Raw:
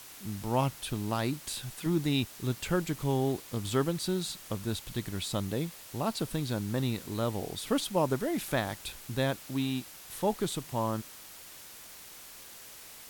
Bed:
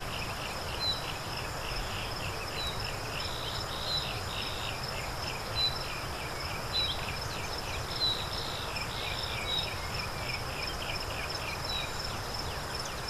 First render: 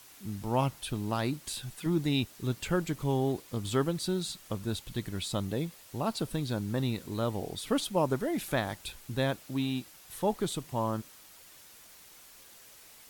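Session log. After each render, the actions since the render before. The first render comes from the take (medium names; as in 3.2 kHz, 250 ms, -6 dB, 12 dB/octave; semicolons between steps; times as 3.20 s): noise reduction 6 dB, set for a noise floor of -49 dBFS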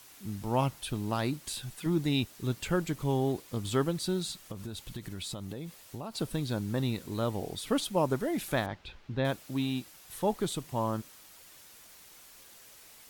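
4.47–6.18 s: compression 12:1, threshold -34 dBFS; 8.66–9.25 s: distance through air 230 m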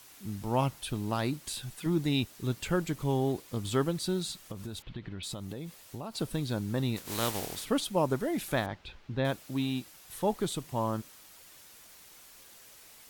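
4.82–5.23 s: low-pass 3.5 kHz 24 dB/octave; 6.96–7.64 s: spectral contrast reduction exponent 0.5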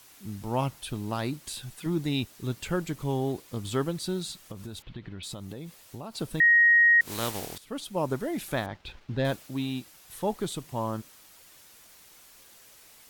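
6.40–7.01 s: bleep 1.88 kHz -15.5 dBFS; 7.58–8.09 s: fade in, from -16.5 dB; 8.75–9.47 s: waveshaping leveller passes 1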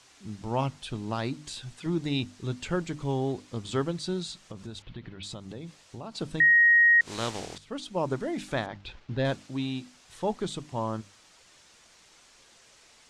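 low-pass 7.7 kHz 24 dB/octave; hum notches 50/100/150/200/250/300 Hz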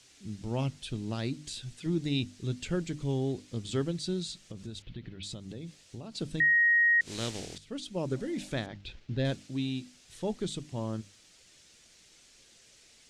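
8.14–8.46 s: spectral replace 550–1100 Hz; peaking EQ 1 kHz -12.5 dB 1.4 oct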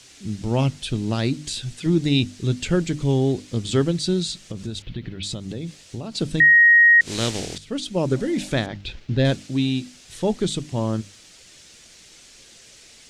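trim +11 dB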